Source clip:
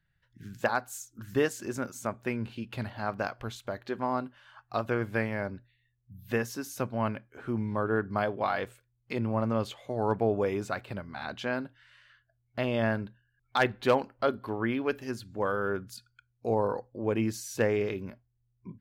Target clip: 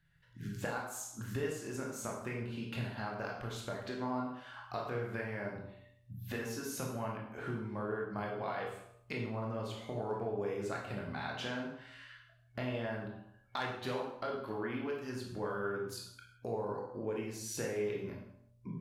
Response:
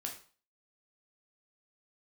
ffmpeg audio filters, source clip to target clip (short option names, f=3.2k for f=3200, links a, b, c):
-filter_complex "[0:a]bandreject=f=45.47:t=h:w=4,bandreject=f=90.94:t=h:w=4,bandreject=f=136.41:t=h:w=4,bandreject=f=181.88:t=h:w=4,bandreject=f=227.35:t=h:w=4,bandreject=f=272.82:t=h:w=4,bandreject=f=318.29:t=h:w=4,bandreject=f=363.76:t=h:w=4,bandreject=f=409.23:t=h:w=4,bandreject=f=454.7:t=h:w=4,bandreject=f=500.17:t=h:w=4,bandreject=f=545.64:t=h:w=4,bandreject=f=591.11:t=h:w=4,bandreject=f=636.58:t=h:w=4,bandreject=f=682.05:t=h:w=4,bandreject=f=727.52:t=h:w=4,bandreject=f=772.99:t=h:w=4,bandreject=f=818.46:t=h:w=4,bandreject=f=863.93:t=h:w=4,bandreject=f=909.4:t=h:w=4,bandreject=f=954.87:t=h:w=4,bandreject=f=1.00034k:t=h:w=4,bandreject=f=1.04581k:t=h:w=4,bandreject=f=1.09128k:t=h:w=4,bandreject=f=1.13675k:t=h:w=4,bandreject=f=1.18222k:t=h:w=4,bandreject=f=1.22769k:t=h:w=4,bandreject=f=1.27316k:t=h:w=4,acompressor=threshold=-42dB:ratio=4[a];[1:a]atrim=start_sample=2205,afade=t=out:st=0.29:d=0.01,atrim=end_sample=13230,asetrate=26460,aresample=44100[b];[a][b]afir=irnorm=-1:irlink=0,volume=2.5dB"